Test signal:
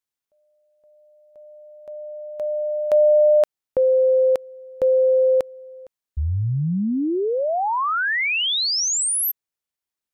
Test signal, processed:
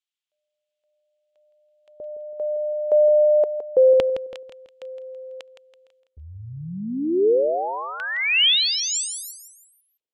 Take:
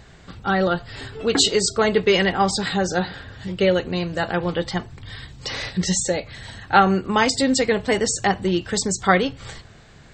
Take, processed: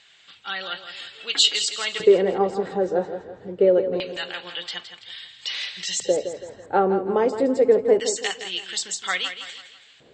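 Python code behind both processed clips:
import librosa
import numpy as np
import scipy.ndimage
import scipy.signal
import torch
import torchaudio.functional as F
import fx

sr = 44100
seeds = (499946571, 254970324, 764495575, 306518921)

y = fx.peak_eq(x, sr, hz=7400.0, db=8.0, octaves=0.37)
y = fx.filter_lfo_bandpass(y, sr, shape='square', hz=0.25, low_hz=450.0, high_hz=3100.0, q=2.7)
y = fx.echo_feedback(y, sr, ms=165, feedback_pct=42, wet_db=-10.0)
y = y * 10.0 ** (5.5 / 20.0)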